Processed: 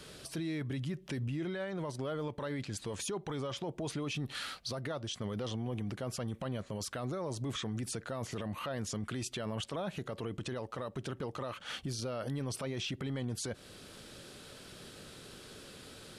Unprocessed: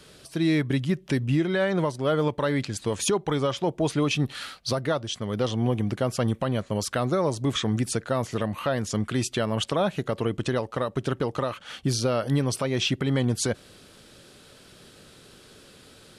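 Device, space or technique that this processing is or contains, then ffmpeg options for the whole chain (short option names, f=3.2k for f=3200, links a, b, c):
stacked limiters: -af "alimiter=limit=-19dB:level=0:latency=1:release=474,alimiter=level_in=1dB:limit=-24dB:level=0:latency=1:release=10,volume=-1dB,alimiter=level_in=6dB:limit=-24dB:level=0:latency=1:release=114,volume=-6dB"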